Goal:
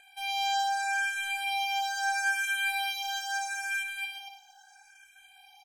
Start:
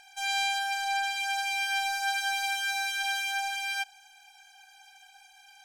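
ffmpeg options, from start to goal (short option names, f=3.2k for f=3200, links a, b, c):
-filter_complex "[0:a]equalizer=f=4.3k:w=3.2:g=-5.5,asplit=2[a][b];[b]aecho=0:1:220|363|456|516.4|555.6:0.631|0.398|0.251|0.158|0.1[c];[a][c]amix=inputs=2:normalize=0,asplit=2[d][e];[e]afreqshift=0.76[f];[d][f]amix=inputs=2:normalize=1"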